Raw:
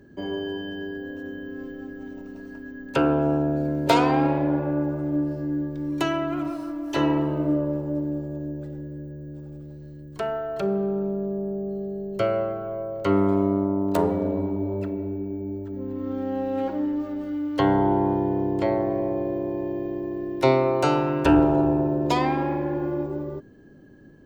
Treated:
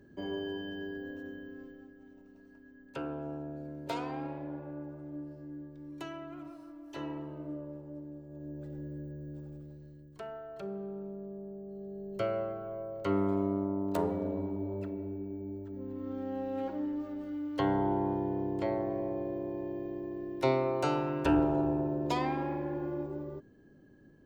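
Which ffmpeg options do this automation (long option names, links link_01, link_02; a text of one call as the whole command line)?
ffmpeg -i in.wav -af "volume=11dB,afade=type=out:start_time=1.08:duration=0.86:silence=0.298538,afade=type=in:start_time=8.26:duration=0.61:silence=0.251189,afade=type=out:start_time=9.37:duration=0.85:silence=0.334965,afade=type=in:start_time=11.67:duration=0.49:silence=0.501187" out.wav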